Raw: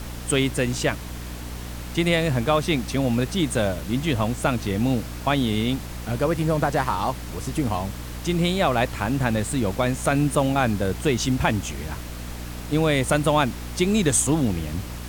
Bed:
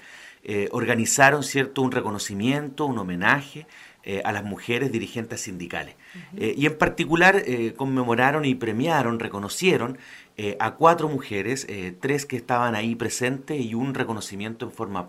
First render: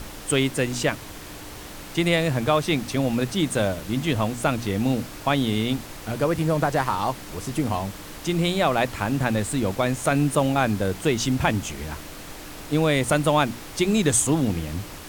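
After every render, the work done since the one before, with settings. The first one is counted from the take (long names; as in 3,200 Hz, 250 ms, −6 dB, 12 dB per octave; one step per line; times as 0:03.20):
mains-hum notches 60/120/180/240 Hz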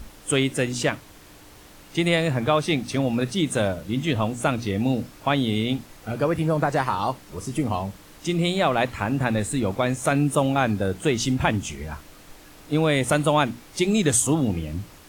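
noise reduction from a noise print 9 dB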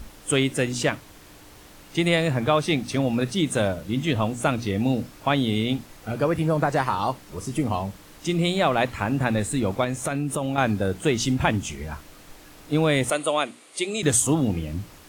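0:09.84–0:10.58: downward compressor, threshold −22 dBFS
0:13.10–0:14.03: loudspeaker in its box 440–9,800 Hz, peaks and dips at 880 Hz −8 dB, 1,600 Hz −6 dB, 5,500 Hz −8 dB, 9,100 Hz +9 dB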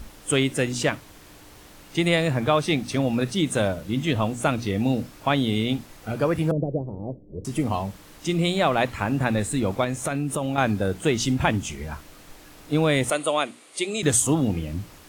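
0:06.51–0:07.45: Butterworth low-pass 550 Hz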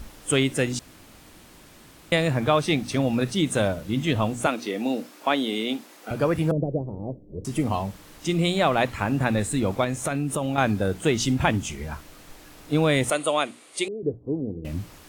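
0:00.79–0:02.12: fill with room tone
0:04.46–0:06.11: high-pass filter 250 Hz 24 dB per octave
0:13.88–0:14.65: transistor ladder low-pass 500 Hz, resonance 55%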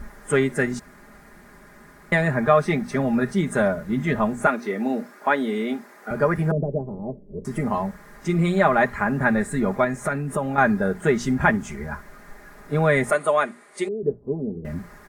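high shelf with overshoot 2,300 Hz −8 dB, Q 3
comb filter 4.9 ms, depth 74%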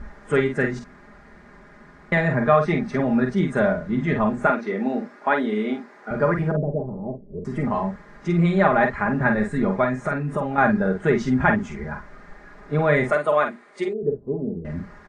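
high-frequency loss of the air 130 metres
double-tracking delay 47 ms −6 dB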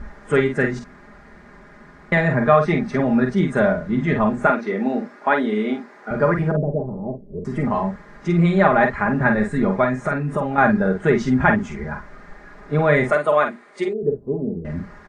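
level +2.5 dB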